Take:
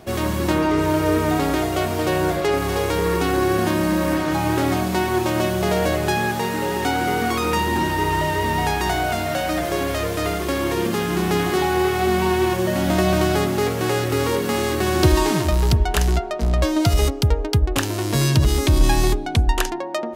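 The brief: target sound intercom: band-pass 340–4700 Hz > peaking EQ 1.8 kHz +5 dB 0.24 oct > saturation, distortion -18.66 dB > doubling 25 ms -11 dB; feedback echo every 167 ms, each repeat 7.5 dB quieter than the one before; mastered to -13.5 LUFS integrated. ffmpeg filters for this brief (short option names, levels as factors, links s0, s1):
-filter_complex "[0:a]highpass=340,lowpass=4700,equalizer=f=1800:t=o:w=0.24:g=5,aecho=1:1:167|334|501|668|835:0.422|0.177|0.0744|0.0312|0.0131,asoftclip=threshold=0.224,asplit=2[s0][s1];[s1]adelay=25,volume=0.282[s2];[s0][s2]amix=inputs=2:normalize=0,volume=2.99"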